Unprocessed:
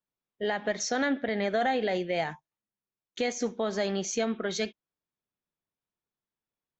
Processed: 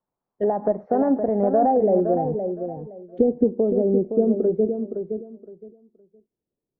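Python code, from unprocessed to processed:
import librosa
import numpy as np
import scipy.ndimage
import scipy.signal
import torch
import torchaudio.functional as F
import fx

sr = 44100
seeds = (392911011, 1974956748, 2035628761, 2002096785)

y = fx.env_lowpass_down(x, sr, base_hz=630.0, full_db=-27.5)
y = fx.low_shelf(y, sr, hz=180.0, db=9.5, at=(2.25, 3.44))
y = fx.filter_sweep_lowpass(y, sr, from_hz=900.0, to_hz=420.0, start_s=1.63, end_s=2.16, q=1.8)
y = fx.echo_feedback(y, sr, ms=516, feedback_pct=21, wet_db=-7.5)
y = y * librosa.db_to_amplitude(8.0)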